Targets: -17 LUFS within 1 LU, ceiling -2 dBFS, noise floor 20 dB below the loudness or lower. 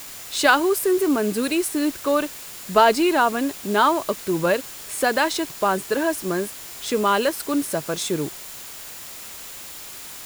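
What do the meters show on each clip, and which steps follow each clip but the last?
steady tone 7.1 kHz; tone level -48 dBFS; noise floor -38 dBFS; noise floor target -42 dBFS; loudness -21.5 LUFS; peak level -1.5 dBFS; loudness target -17.0 LUFS
-> band-stop 7.1 kHz, Q 30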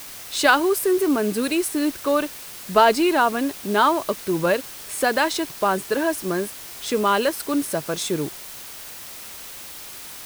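steady tone not found; noise floor -38 dBFS; noise floor target -42 dBFS
-> noise reduction 6 dB, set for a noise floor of -38 dBFS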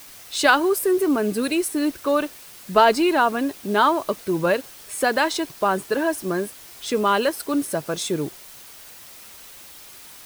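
noise floor -44 dBFS; loudness -21.5 LUFS; peak level -1.5 dBFS; loudness target -17.0 LUFS
-> trim +4.5 dB; peak limiter -2 dBFS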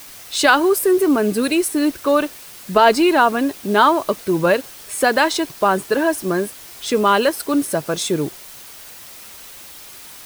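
loudness -17.5 LUFS; peak level -2.0 dBFS; noise floor -39 dBFS

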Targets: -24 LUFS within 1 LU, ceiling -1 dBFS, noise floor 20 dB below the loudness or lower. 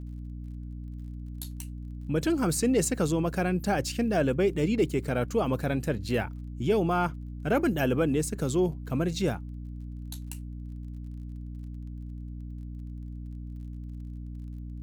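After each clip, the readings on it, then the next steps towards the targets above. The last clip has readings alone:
tick rate 29 per s; hum 60 Hz; highest harmonic 300 Hz; hum level -36 dBFS; loudness -28.5 LUFS; peak level -13.5 dBFS; loudness target -24.0 LUFS
-> de-click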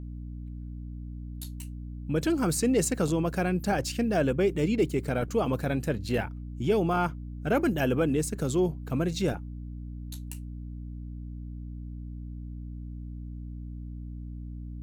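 tick rate 0.81 per s; hum 60 Hz; highest harmonic 300 Hz; hum level -36 dBFS
-> de-hum 60 Hz, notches 5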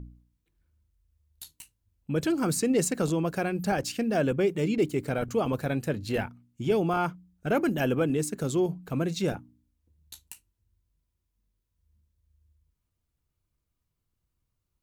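hum not found; loudness -28.0 LUFS; peak level -14.0 dBFS; loudness target -24.0 LUFS
-> trim +4 dB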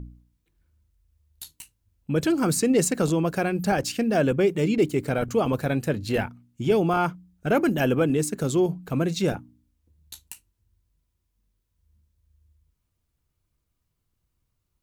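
loudness -24.0 LUFS; peak level -10.0 dBFS; noise floor -77 dBFS

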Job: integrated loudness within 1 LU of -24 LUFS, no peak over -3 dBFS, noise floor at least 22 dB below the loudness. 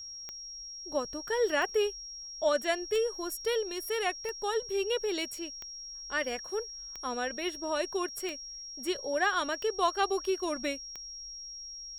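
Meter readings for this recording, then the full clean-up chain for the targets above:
clicks found 9; steady tone 5.6 kHz; tone level -41 dBFS; loudness -32.5 LUFS; peak level -15.0 dBFS; loudness target -24.0 LUFS
-> de-click; band-stop 5.6 kHz, Q 30; trim +8.5 dB

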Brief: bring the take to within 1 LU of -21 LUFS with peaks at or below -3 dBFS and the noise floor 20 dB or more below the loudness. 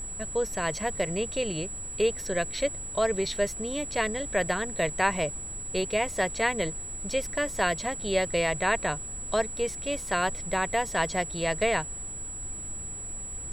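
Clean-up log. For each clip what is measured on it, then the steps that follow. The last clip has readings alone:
steady tone 7.8 kHz; tone level -36 dBFS; noise floor -38 dBFS; noise floor target -49 dBFS; loudness -28.5 LUFS; peak level -8.5 dBFS; loudness target -21.0 LUFS
-> band-stop 7.8 kHz, Q 30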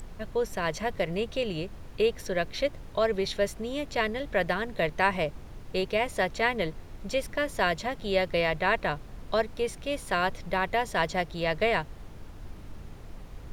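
steady tone not found; noise floor -45 dBFS; noise floor target -49 dBFS
-> noise print and reduce 6 dB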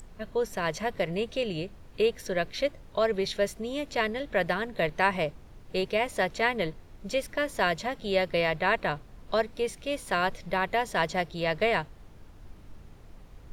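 noise floor -50 dBFS; loudness -29.0 LUFS; peak level -9.0 dBFS; loudness target -21.0 LUFS
-> trim +8 dB; peak limiter -3 dBFS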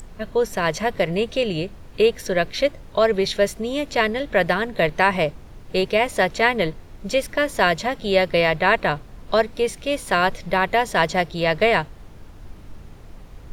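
loudness -21.0 LUFS; peak level -3.0 dBFS; noise floor -42 dBFS

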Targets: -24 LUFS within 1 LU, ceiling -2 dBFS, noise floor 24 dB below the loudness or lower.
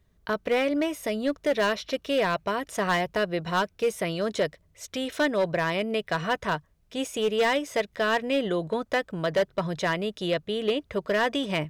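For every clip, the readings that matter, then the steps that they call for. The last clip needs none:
clipped samples 1.4%; clipping level -18.0 dBFS; loudness -27.0 LUFS; peak level -18.0 dBFS; loudness target -24.0 LUFS
-> clip repair -18 dBFS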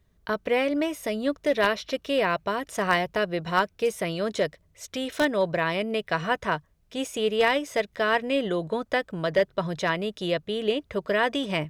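clipped samples 0.0%; loudness -26.5 LUFS; peak level -9.0 dBFS; loudness target -24.0 LUFS
-> trim +2.5 dB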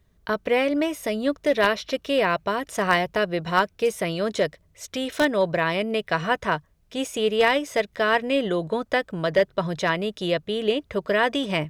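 loudness -24.0 LUFS; peak level -6.5 dBFS; noise floor -62 dBFS

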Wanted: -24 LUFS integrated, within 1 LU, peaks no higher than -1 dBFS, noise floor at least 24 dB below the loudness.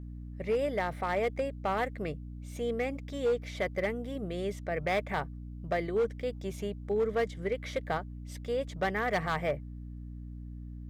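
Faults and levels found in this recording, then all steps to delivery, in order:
clipped samples 1.1%; clipping level -23.0 dBFS; hum 60 Hz; highest harmonic 300 Hz; hum level -40 dBFS; loudness -33.0 LUFS; peak level -23.0 dBFS; loudness target -24.0 LUFS
-> clip repair -23 dBFS; de-hum 60 Hz, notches 5; trim +9 dB

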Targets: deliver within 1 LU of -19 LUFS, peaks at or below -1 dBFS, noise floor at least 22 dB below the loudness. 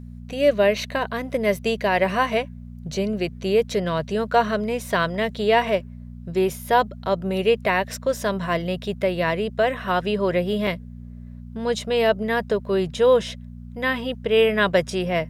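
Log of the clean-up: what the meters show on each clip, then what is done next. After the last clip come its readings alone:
dropouts 1; longest dropout 2.0 ms; hum 60 Hz; highest harmonic 240 Hz; hum level -35 dBFS; loudness -22.5 LUFS; peak level -6.5 dBFS; loudness target -19.0 LUFS
-> interpolate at 10.67 s, 2 ms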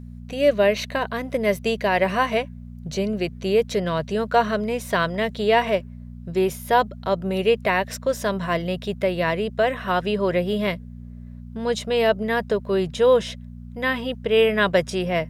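dropouts 0; hum 60 Hz; highest harmonic 240 Hz; hum level -35 dBFS
-> de-hum 60 Hz, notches 4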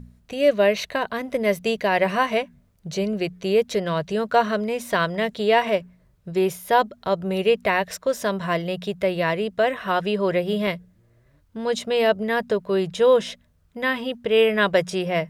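hum not found; loudness -22.5 LUFS; peak level -6.5 dBFS; loudness target -19.0 LUFS
-> trim +3.5 dB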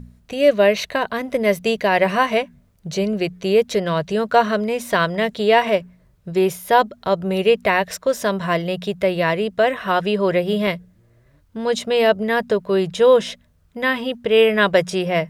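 loudness -19.0 LUFS; peak level -3.0 dBFS; noise floor -57 dBFS

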